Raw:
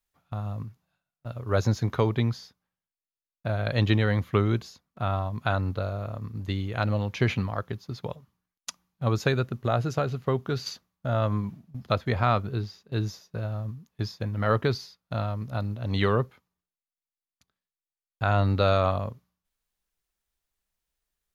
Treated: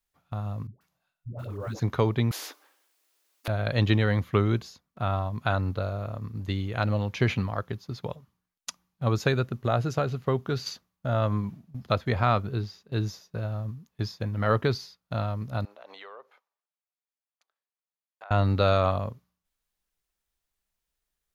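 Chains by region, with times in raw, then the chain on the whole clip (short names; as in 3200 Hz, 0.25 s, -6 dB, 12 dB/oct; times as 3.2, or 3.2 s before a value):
0.67–1.8 block floating point 7-bit + compressor 5:1, threshold -30 dBFS + dispersion highs, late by 0.139 s, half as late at 430 Hz
2.31–3.48 brick-wall FIR high-pass 270 Hz + spectral compressor 4:1
15.65–18.31 HPF 580 Hz 24 dB/oct + tilt -3 dB/oct + compressor 5:1, threshold -43 dBFS
whole clip: dry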